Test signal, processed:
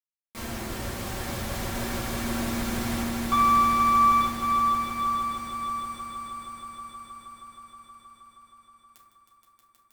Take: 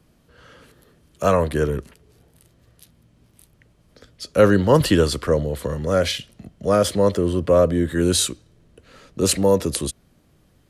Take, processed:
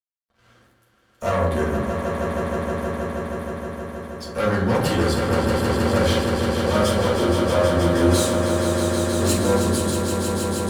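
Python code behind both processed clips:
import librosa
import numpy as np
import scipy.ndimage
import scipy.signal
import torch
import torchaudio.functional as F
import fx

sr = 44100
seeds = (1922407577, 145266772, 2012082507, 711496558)

p1 = np.sign(x) * np.maximum(np.abs(x) - 10.0 ** (-48.0 / 20.0), 0.0)
p2 = fx.tube_stage(p1, sr, drive_db=19.0, bias=0.4)
p3 = p2 + fx.echo_swell(p2, sr, ms=158, loudest=5, wet_db=-7.5, dry=0)
p4 = fx.rev_fdn(p3, sr, rt60_s=0.88, lf_ratio=1.3, hf_ratio=0.4, size_ms=26.0, drr_db=-5.0)
y = F.gain(torch.from_numpy(p4), -4.5).numpy()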